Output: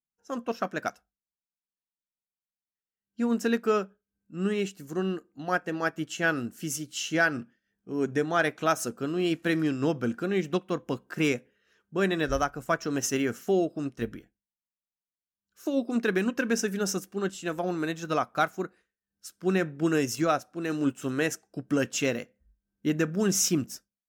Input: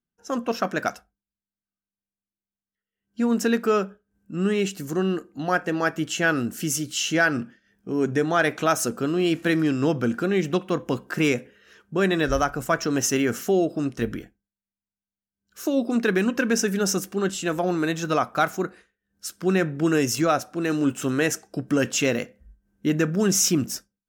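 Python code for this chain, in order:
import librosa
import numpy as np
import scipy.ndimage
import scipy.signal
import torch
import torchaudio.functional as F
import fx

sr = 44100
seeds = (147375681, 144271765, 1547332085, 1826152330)

y = fx.upward_expand(x, sr, threshold_db=-40.0, expansion=1.5)
y = y * librosa.db_to_amplitude(-3.0)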